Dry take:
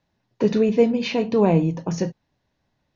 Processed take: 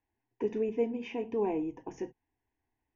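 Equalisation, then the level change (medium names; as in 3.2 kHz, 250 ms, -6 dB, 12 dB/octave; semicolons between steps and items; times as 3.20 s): dynamic bell 1.6 kHz, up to -5 dB, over -38 dBFS, Q 1; treble shelf 4.5 kHz -10 dB; static phaser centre 860 Hz, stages 8; -8.5 dB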